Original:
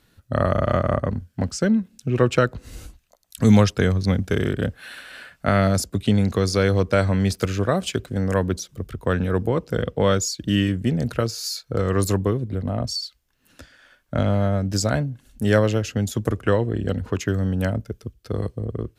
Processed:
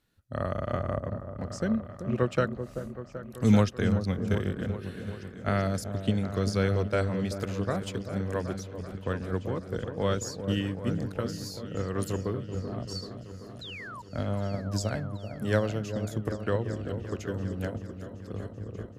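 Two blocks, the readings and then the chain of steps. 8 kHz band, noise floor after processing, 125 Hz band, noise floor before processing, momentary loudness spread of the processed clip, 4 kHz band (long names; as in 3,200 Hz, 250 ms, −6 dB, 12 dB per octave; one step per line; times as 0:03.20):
−12.0 dB, −45 dBFS, −8.0 dB, −64 dBFS, 12 LU, −10.5 dB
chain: sound drawn into the spectrogram fall, 0:13.61–0:14.02, 900–4,200 Hz −28 dBFS
echo whose low-pass opens from repeat to repeat 385 ms, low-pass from 750 Hz, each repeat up 1 octave, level −6 dB
expander for the loud parts 1.5 to 1, over −26 dBFS
level −6 dB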